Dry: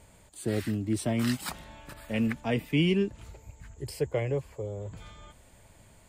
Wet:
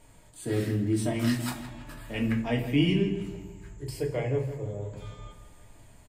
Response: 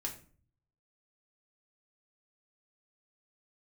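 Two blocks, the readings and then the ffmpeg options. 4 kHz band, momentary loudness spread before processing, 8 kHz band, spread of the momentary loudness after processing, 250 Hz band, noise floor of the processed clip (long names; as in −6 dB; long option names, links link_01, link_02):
+0.5 dB, 22 LU, −0.5 dB, 18 LU, +1.5 dB, −55 dBFS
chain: -filter_complex "[0:a]asplit=2[link_01][link_02];[link_02]adelay=164,lowpass=frequency=3800:poles=1,volume=-11.5dB,asplit=2[link_03][link_04];[link_04]adelay=164,lowpass=frequency=3800:poles=1,volume=0.51,asplit=2[link_05][link_06];[link_06]adelay=164,lowpass=frequency=3800:poles=1,volume=0.51,asplit=2[link_07][link_08];[link_08]adelay=164,lowpass=frequency=3800:poles=1,volume=0.51,asplit=2[link_09][link_10];[link_10]adelay=164,lowpass=frequency=3800:poles=1,volume=0.51[link_11];[link_01][link_03][link_05][link_07][link_09][link_11]amix=inputs=6:normalize=0[link_12];[1:a]atrim=start_sample=2205[link_13];[link_12][link_13]afir=irnorm=-1:irlink=0"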